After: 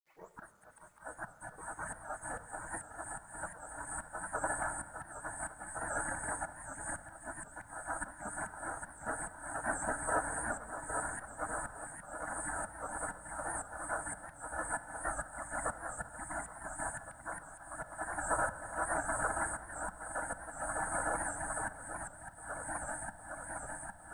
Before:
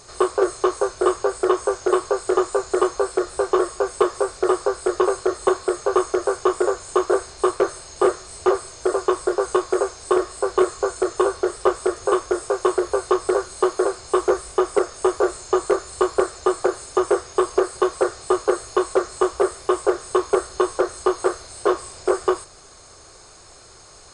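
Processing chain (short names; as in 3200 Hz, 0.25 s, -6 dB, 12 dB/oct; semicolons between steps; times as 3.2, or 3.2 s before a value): tape start at the beginning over 0.32 s; spectral noise reduction 11 dB; Chebyshev band-stop 1700–8800 Hz, order 3; high shelf 2100 Hz -8.5 dB; swung echo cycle 0.808 s, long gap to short 3:1, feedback 72%, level -3 dB; auto swell 0.465 s; spectral gate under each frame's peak -25 dB weak; companded quantiser 8-bit; shoebox room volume 2400 m³, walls mixed, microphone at 0.61 m; record warp 78 rpm, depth 100 cents; gain +6 dB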